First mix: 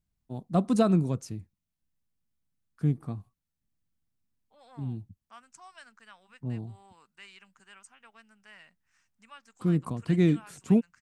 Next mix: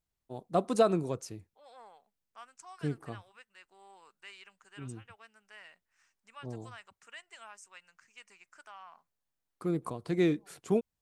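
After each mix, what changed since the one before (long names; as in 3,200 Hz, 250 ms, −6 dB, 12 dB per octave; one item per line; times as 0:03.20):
second voice: entry −2.95 s
master: add low shelf with overshoot 300 Hz −8.5 dB, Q 1.5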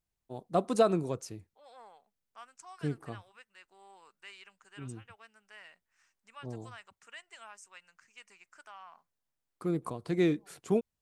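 nothing changed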